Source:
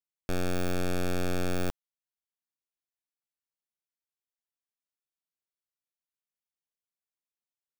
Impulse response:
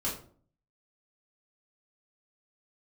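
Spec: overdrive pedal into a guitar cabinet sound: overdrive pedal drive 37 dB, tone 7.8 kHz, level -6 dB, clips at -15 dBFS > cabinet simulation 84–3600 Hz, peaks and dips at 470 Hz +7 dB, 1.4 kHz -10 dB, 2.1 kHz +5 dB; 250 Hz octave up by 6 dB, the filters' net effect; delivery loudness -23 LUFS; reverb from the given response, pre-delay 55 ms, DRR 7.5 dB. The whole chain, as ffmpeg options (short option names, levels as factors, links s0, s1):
-filter_complex "[0:a]equalizer=f=250:t=o:g=7.5,asplit=2[s0][s1];[1:a]atrim=start_sample=2205,adelay=55[s2];[s1][s2]afir=irnorm=-1:irlink=0,volume=0.237[s3];[s0][s3]amix=inputs=2:normalize=0,asplit=2[s4][s5];[s5]highpass=f=720:p=1,volume=70.8,asoftclip=type=tanh:threshold=0.178[s6];[s4][s6]amix=inputs=2:normalize=0,lowpass=f=7800:p=1,volume=0.501,highpass=84,equalizer=f=470:t=q:w=4:g=7,equalizer=f=1400:t=q:w=4:g=-10,equalizer=f=2100:t=q:w=4:g=5,lowpass=f=3600:w=0.5412,lowpass=f=3600:w=1.3066,volume=0.841"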